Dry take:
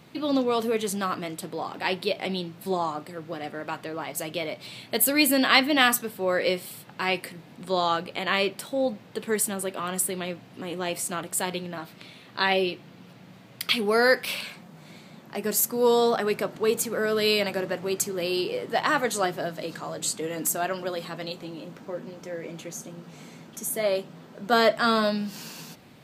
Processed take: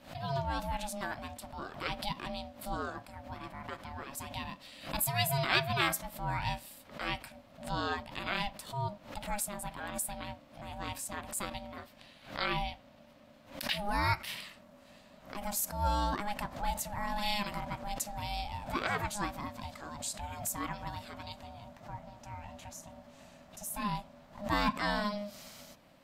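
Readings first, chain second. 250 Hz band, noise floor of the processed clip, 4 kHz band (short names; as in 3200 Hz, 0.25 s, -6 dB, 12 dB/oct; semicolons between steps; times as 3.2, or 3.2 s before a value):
-11.5 dB, -58 dBFS, -10.0 dB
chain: ring modulator 410 Hz; backwards sustainer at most 130 dB/s; gain -7 dB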